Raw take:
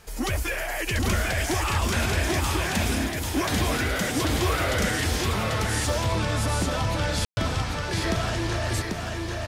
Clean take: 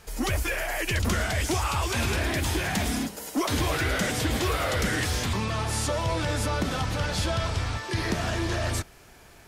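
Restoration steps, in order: room tone fill 7.25–7.37 s; inverse comb 791 ms -3 dB

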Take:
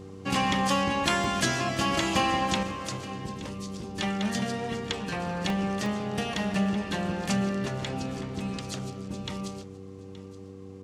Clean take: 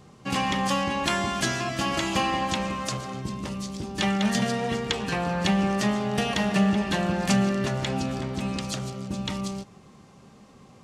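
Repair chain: de-hum 96.1 Hz, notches 5; interpolate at 1.24/5.50/5.86/6.54 s, 1.9 ms; inverse comb 873 ms -17.5 dB; gain correction +5 dB, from 2.63 s

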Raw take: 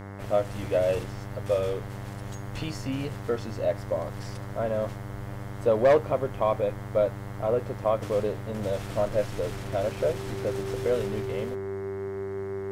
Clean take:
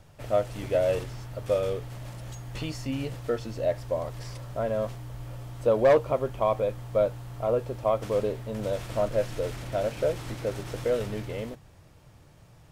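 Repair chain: de-hum 99 Hz, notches 22; band-stop 390 Hz, Q 30

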